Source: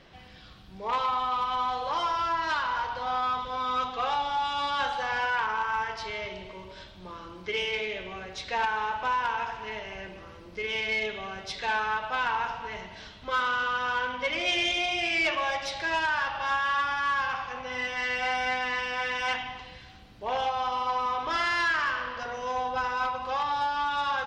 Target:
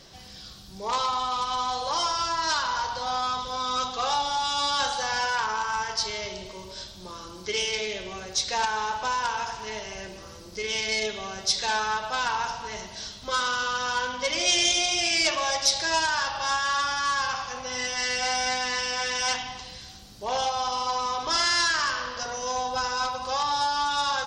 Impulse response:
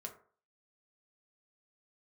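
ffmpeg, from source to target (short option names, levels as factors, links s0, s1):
-filter_complex "[0:a]highshelf=f=3800:t=q:w=1.5:g=14,asplit=2[s0][s1];[1:a]atrim=start_sample=2205,asetrate=40572,aresample=44100[s2];[s1][s2]afir=irnorm=-1:irlink=0,volume=0.473[s3];[s0][s3]amix=inputs=2:normalize=0"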